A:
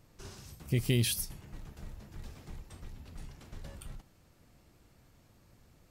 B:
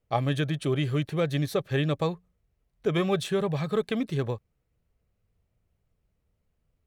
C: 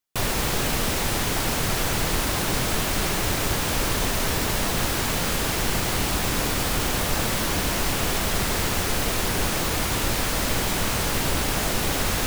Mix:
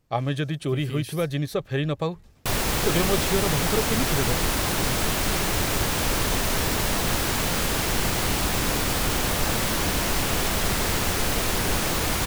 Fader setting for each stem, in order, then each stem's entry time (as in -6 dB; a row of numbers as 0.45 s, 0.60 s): -7.5 dB, +0.5 dB, 0.0 dB; 0.00 s, 0.00 s, 2.30 s